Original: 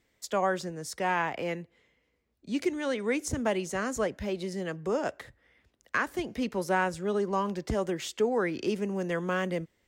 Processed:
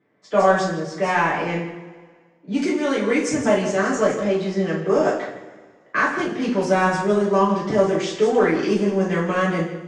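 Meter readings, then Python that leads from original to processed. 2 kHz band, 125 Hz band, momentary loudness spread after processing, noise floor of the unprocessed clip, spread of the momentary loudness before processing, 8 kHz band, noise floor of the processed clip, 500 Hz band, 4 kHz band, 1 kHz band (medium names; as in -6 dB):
+9.0 dB, +10.5 dB, 7 LU, -74 dBFS, 6 LU, +6.0 dB, -55 dBFS, +11.0 dB, +7.5 dB, +10.0 dB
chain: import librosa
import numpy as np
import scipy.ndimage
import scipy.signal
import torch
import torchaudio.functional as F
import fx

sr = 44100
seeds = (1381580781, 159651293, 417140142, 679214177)

p1 = fx.cabinet(x, sr, low_hz=120.0, low_slope=24, high_hz=8200.0, hz=(310.0, 2800.0, 4100.0), db=(6, -4, -4))
p2 = 10.0 ** (-27.5 / 20.0) * np.tanh(p1 / 10.0 ** (-27.5 / 20.0))
p3 = p1 + (p2 * 10.0 ** (-6.5 / 20.0))
p4 = p3 + 10.0 ** (-11.0 / 20.0) * np.pad(p3, (int(160 * sr / 1000.0), 0))[:len(p3)]
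p5 = fx.env_lowpass(p4, sr, base_hz=1500.0, full_db=-20.5)
y = fx.rev_double_slope(p5, sr, seeds[0], early_s=0.4, late_s=1.7, knee_db=-17, drr_db=-7.0)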